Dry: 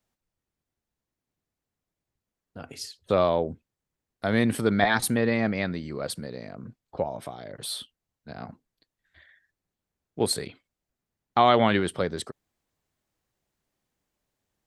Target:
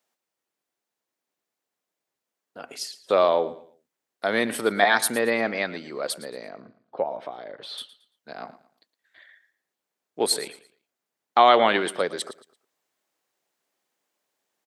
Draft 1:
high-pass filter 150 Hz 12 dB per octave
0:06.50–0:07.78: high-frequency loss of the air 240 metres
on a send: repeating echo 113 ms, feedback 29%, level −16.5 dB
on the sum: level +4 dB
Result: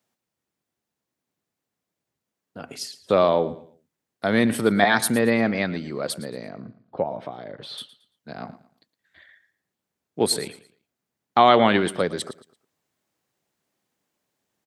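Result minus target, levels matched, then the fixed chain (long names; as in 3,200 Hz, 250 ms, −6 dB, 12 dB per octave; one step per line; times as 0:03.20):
125 Hz band +11.5 dB
high-pass filter 400 Hz 12 dB per octave
0:06.50–0:07.78: high-frequency loss of the air 240 metres
on a send: repeating echo 113 ms, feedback 29%, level −16.5 dB
on the sum: level +4 dB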